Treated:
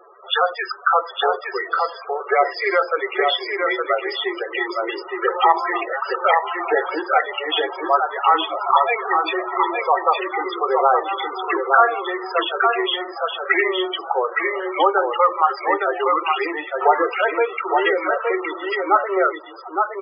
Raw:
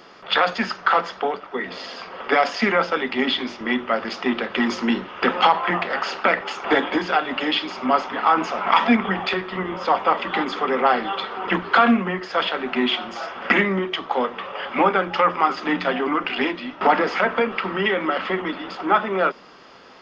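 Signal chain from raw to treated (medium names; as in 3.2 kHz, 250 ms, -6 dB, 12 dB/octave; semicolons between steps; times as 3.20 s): steep high-pass 340 Hz 72 dB/octave; loudest bins only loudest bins 16; delay 865 ms -4 dB; trim +2.5 dB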